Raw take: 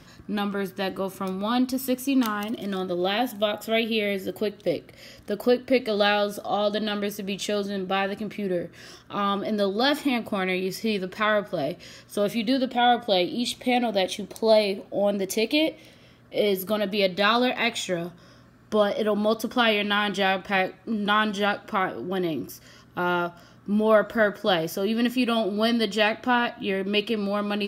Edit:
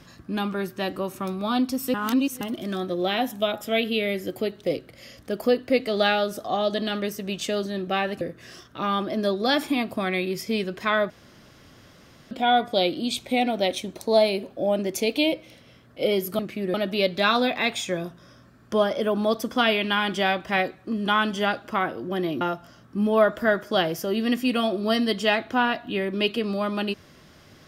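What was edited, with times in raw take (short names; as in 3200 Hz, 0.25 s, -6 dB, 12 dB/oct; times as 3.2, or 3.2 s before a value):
1.94–2.41 reverse
8.21–8.56 move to 16.74
11.45–12.66 room tone
22.41–23.14 cut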